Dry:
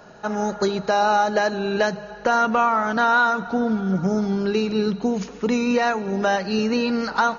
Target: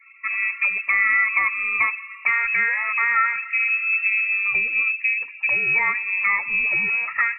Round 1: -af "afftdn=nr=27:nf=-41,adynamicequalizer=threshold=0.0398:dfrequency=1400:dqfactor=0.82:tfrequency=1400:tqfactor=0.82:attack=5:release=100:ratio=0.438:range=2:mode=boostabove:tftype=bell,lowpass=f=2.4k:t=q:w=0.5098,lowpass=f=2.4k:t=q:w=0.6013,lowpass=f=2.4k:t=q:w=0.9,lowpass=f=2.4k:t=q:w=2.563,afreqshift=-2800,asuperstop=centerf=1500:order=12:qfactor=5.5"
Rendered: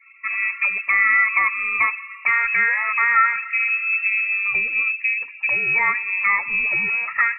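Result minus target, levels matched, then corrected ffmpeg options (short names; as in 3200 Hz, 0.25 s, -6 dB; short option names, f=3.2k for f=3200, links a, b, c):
1000 Hz band +2.5 dB
-af "afftdn=nr=27:nf=-41,lowpass=f=2.4k:t=q:w=0.5098,lowpass=f=2.4k:t=q:w=0.6013,lowpass=f=2.4k:t=q:w=0.9,lowpass=f=2.4k:t=q:w=2.563,afreqshift=-2800,asuperstop=centerf=1500:order=12:qfactor=5.5"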